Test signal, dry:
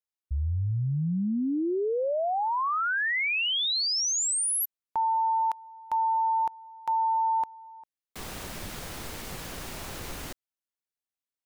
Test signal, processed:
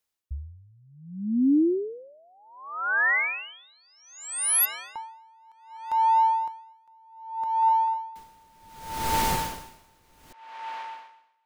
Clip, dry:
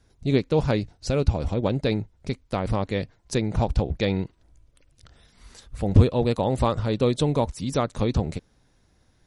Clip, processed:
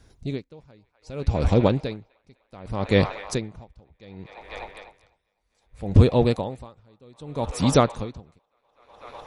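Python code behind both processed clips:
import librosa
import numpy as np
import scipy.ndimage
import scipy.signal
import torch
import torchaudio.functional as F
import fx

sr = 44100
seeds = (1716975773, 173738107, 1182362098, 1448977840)

y = fx.echo_wet_bandpass(x, sr, ms=250, feedback_pct=83, hz=1500.0, wet_db=-12.5)
y = fx.rider(y, sr, range_db=5, speed_s=0.5)
y = y * 10.0 ** (-37 * (0.5 - 0.5 * np.cos(2.0 * np.pi * 0.65 * np.arange(len(y)) / sr)) / 20.0)
y = y * librosa.db_to_amplitude(7.0)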